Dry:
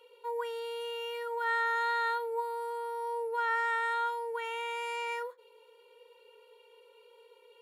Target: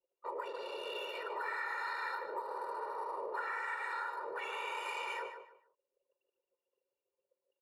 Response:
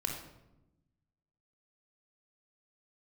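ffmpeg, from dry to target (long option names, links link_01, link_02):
-filter_complex "[0:a]asuperstop=centerf=3300:order=4:qfactor=4.1,asplit=2[link_01][link_02];[link_02]asetrate=55563,aresample=44100,atempo=0.793701,volume=-11dB[link_03];[link_01][link_03]amix=inputs=2:normalize=0,afftfilt=real='hypot(re,im)*cos(2*PI*random(0))':imag='hypot(re,im)*sin(2*PI*random(1))':win_size=512:overlap=0.75,highpass=frequency=870:poles=1,anlmdn=0.00251,acompressor=threshold=-43dB:ratio=6,asplit=2[link_04][link_05];[link_05]adelay=149,lowpass=frequency=4100:poles=1,volume=-8dB,asplit=2[link_06][link_07];[link_07]adelay=149,lowpass=frequency=4100:poles=1,volume=0.27,asplit=2[link_08][link_09];[link_09]adelay=149,lowpass=frequency=4100:poles=1,volume=0.27[link_10];[link_04][link_06][link_08][link_10]amix=inputs=4:normalize=0,volume=6.5dB"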